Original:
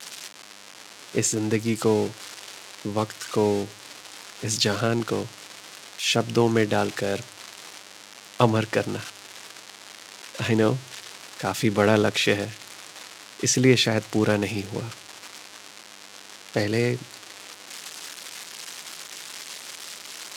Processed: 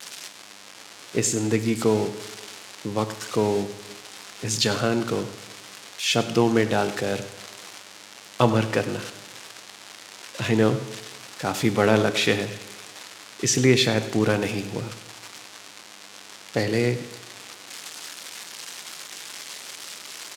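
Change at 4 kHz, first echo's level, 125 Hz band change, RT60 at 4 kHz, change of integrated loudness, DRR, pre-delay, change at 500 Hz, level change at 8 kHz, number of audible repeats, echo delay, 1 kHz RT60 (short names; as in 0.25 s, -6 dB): +0.5 dB, -16.0 dB, +0.5 dB, 1.1 s, +0.5 dB, 9.5 dB, 5 ms, +0.5 dB, +0.5 dB, 1, 0.1 s, 1.2 s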